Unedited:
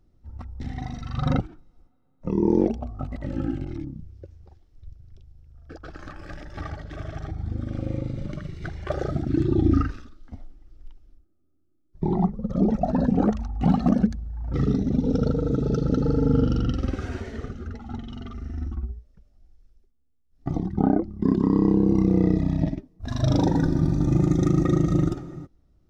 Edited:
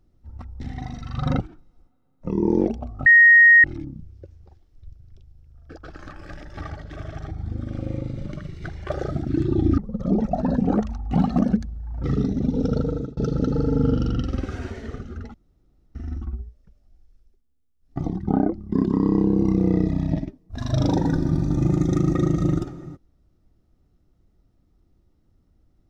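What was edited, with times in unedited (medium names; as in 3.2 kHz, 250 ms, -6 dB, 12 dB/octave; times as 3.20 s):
3.06–3.64 s: bleep 1.87 kHz -8 dBFS
9.78–12.28 s: delete
15.40–15.67 s: fade out
17.84–18.45 s: room tone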